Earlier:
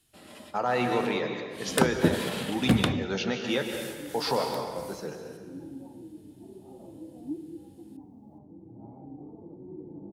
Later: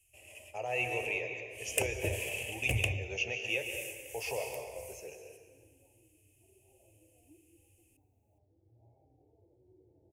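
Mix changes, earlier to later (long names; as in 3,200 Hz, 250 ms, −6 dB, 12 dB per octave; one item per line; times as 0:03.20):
second sound −8.0 dB
master: add drawn EQ curve 110 Hz 0 dB, 160 Hz −26 dB, 250 Hz −26 dB, 380 Hz −11 dB, 650 Hz −6 dB, 1,400 Hz −29 dB, 2,600 Hz +8 dB, 3,900 Hz −26 dB, 6,400 Hz 0 dB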